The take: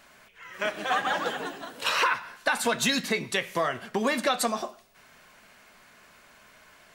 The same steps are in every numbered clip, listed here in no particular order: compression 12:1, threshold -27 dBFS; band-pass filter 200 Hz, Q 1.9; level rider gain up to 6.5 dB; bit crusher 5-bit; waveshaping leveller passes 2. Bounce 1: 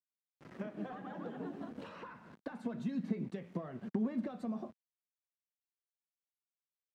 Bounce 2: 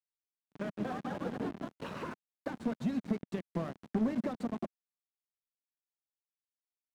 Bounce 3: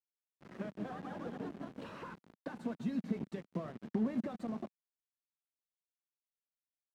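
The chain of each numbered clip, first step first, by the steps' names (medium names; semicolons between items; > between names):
waveshaping leveller > level rider > bit crusher > compression > band-pass filter; level rider > compression > bit crusher > band-pass filter > waveshaping leveller; level rider > waveshaping leveller > compression > bit crusher > band-pass filter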